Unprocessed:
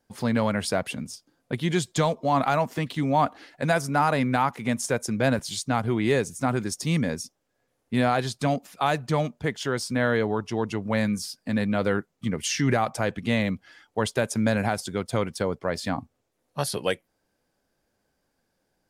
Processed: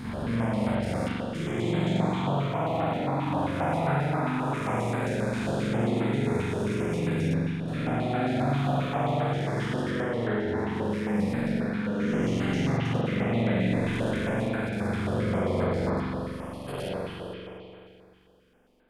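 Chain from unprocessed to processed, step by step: time blur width 0.664 s; de-hum 55.54 Hz, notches 30; limiter -27 dBFS, peak gain reduction 11 dB; level quantiser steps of 13 dB; reverb RT60 2.5 s, pre-delay 43 ms, DRR -10 dB; stepped notch 7.5 Hz 570–5800 Hz; gain +2.5 dB

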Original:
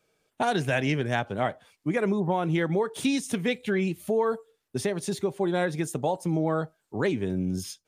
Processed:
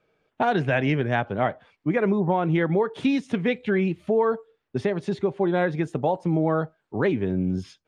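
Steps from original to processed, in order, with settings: LPF 2600 Hz 12 dB/oct; gain +3.5 dB

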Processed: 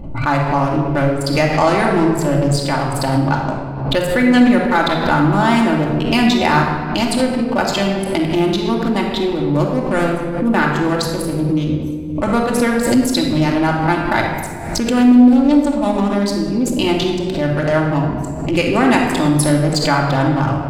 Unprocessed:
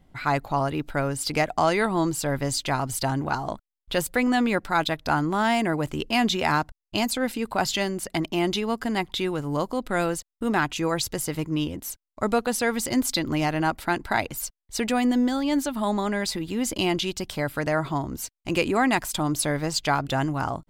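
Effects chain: Wiener smoothing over 25 samples; shoebox room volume 2000 m³, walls mixed, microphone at 2.5 m; backwards sustainer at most 56 dB/s; gain +5 dB

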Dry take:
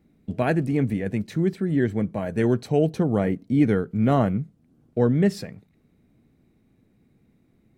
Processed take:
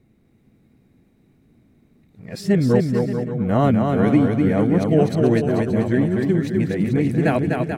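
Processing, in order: whole clip reversed; bouncing-ball echo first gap 0.25 s, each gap 0.75×, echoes 5; gain +2.5 dB

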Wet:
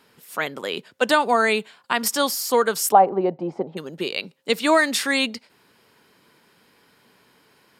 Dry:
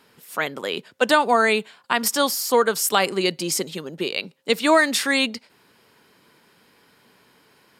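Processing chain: 2.92–3.77 synth low-pass 780 Hz, resonance Q 4.3; gain -1 dB

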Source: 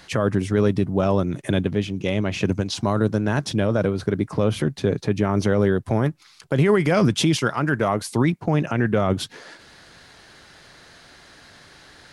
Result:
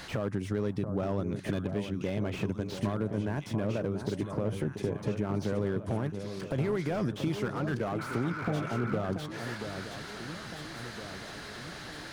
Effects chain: 2.93–5.34 bell 3900 Hz -9 dB 1.3 oct; 8.02–8.92 spectral repair 850–2600 Hz after; compressor 4:1, threshold -35 dBFS, peak gain reduction 17.5 dB; echo with dull and thin repeats by turns 0.682 s, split 1100 Hz, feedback 74%, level -8.5 dB; slew limiter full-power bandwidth 17 Hz; gain +4 dB

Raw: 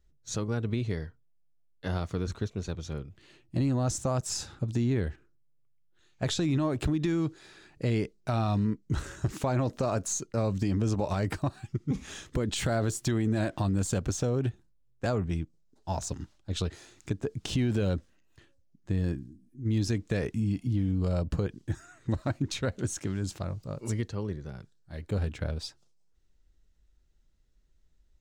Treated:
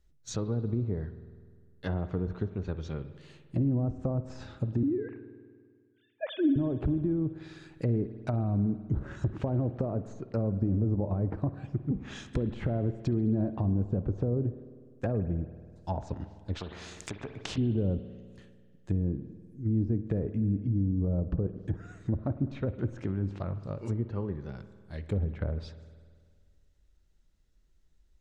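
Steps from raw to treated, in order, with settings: 4.83–6.56 sine-wave speech; treble ducked by the level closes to 480 Hz, closed at -25.5 dBFS; spring tank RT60 1.9 s, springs 50 ms, chirp 20 ms, DRR 12 dB; 16.55–17.58 spectral compressor 2:1

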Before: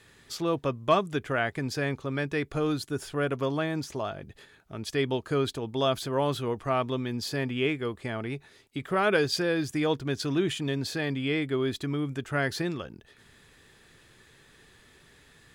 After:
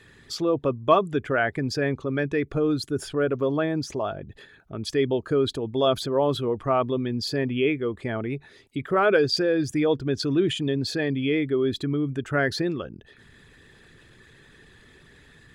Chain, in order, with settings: formant sharpening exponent 1.5; gain +4.5 dB

